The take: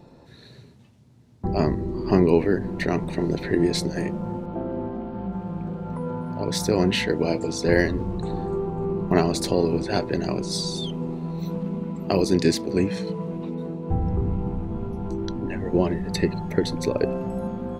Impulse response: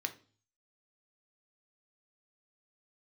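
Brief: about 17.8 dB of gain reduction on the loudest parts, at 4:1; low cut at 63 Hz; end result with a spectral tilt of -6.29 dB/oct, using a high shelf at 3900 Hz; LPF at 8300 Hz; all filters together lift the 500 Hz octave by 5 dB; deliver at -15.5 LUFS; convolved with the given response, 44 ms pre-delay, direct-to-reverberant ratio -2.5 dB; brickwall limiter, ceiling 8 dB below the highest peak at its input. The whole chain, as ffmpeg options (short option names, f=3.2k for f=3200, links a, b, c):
-filter_complex "[0:a]highpass=63,lowpass=8.3k,equalizer=f=500:t=o:g=6.5,highshelf=f=3.9k:g=-5.5,acompressor=threshold=-32dB:ratio=4,alimiter=limit=-23.5dB:level=0:latency=1,asplit=2[a][b];[1:a]atrim=start_sample=2205,adelay=44[c];[b][c]afir=irnorm=-1:irlink=0,volume=1dB[d];[a][d]amix=inputs=2:normalize=0,volume=16.5dB"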